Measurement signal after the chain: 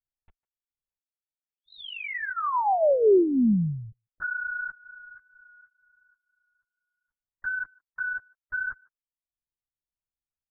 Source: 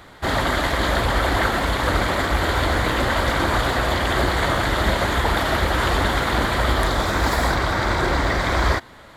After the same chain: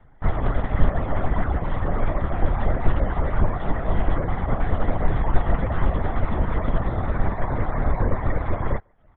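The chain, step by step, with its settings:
reverb reduction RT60 0.58 s
dynamic equaliser 1,600 Hz, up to −3 dB, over −31 dBFS, Q 3.6
band-pass filter 280–2,400 Hz
notch filter 1,400 Hz, Q 15
comb filter 5.2 ms, depth 39%
gate on every frequency bin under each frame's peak −25 dB strong
linear-prediction vocoder at 8 kHz whisper
brickwall limiter −17 dBFS
spectral tilt −3.5 dB per octave
far-end echo of a speakerphone 150 ms, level −24 dB
expander for the loud parts 1.5 to 1, over −35 dBFS

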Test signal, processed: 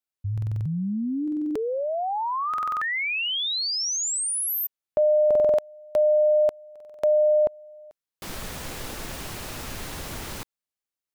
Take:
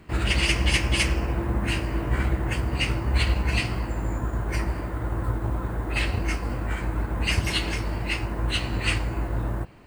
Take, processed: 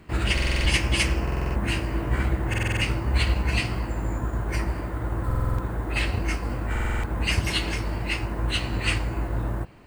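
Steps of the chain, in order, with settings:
buffer that repeats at 0:00.33/0:01.23/0:02.49/0:05.26/0:06.71, samples 2,048, times 6

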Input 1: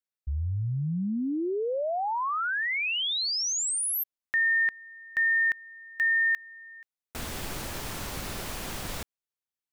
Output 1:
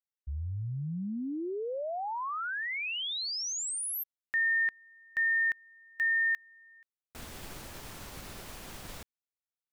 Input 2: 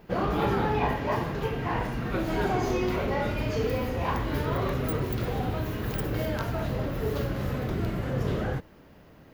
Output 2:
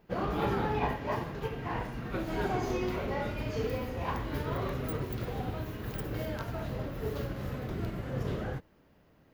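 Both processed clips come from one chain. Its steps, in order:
expander for the loud parts 1.5 to 1, over −37 dBFS
level −3.5 dB

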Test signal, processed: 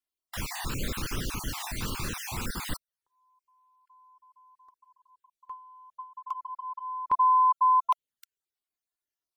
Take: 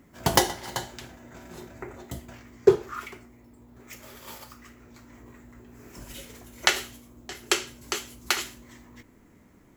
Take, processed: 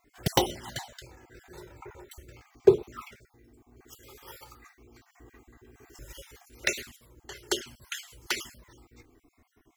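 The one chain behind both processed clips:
time-frequency cells dropped at random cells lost 36%
flanger swept by the level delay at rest 2.9 ms, full sweep at −22.5 dBFS

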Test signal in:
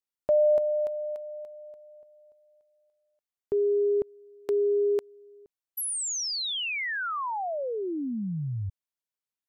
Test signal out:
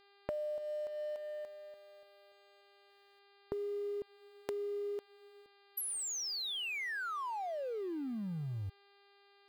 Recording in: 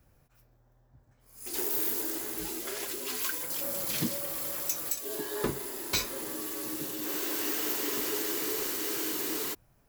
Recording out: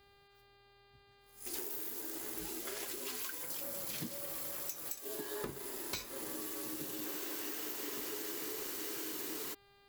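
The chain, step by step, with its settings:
mu-law and A-law mismatch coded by A
downward compressor 12 to 1, threshold −37 dBFS
hum with harmonics 400 Hz, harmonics 12, −66 dBFS −3 dB per octave

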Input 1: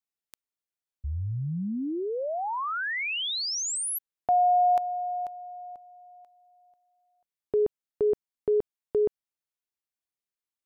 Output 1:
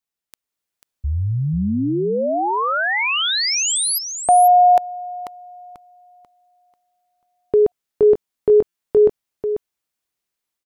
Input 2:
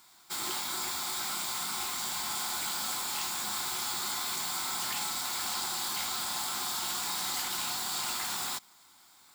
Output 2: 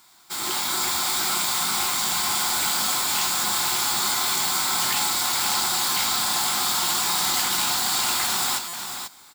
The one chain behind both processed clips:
automatic gain control gain up to 6 dB
single-tap delay 491 ms −8 dB
buffer that repeats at 0:08.68, samples 256, times 8
level +4 dB

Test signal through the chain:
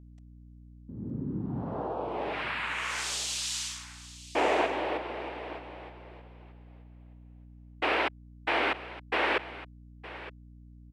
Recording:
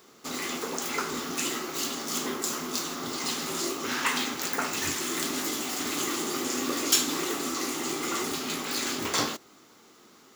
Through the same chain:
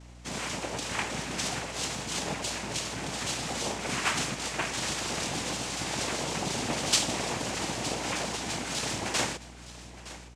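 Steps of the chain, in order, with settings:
cochlear-implant simulation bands 4
single-tap delay 915 ms −16 dB
mains hum 60 Hz, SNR 16 dB
level −1 dB

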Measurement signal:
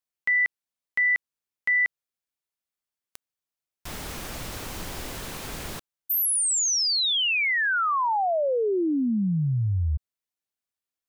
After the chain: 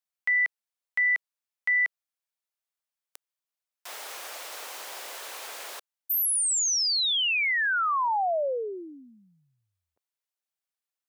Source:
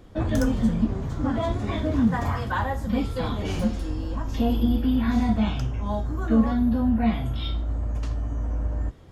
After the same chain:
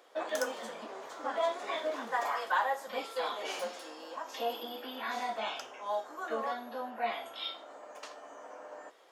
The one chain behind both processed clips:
high-pass filter 510 Hz 24 dB per octave
level −1.5 dB

